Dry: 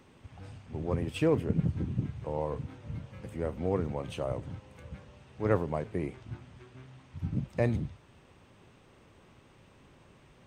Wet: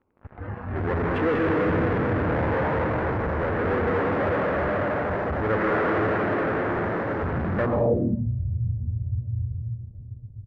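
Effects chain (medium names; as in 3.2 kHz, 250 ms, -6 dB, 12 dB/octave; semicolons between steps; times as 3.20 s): local Wiener filter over 25 samples; peaking EQ 150 Hz -9 dB 0.64 oct; frequency-shifting echo 308 ms, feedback 48%, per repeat +110 Hz, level -14 dB; reverberation RT60 4.6 s, pre-delay 108 ms, DRR -4.5 dB; in parallel at -9.5 dB: fuzz box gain 47 dB, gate -53 dBFS; on the sum: low-pass sweep 1.7 kHz -> 100 Hz, 7.60–8.33 s; spectral noise reduction 7 dB; trim -4.5 dB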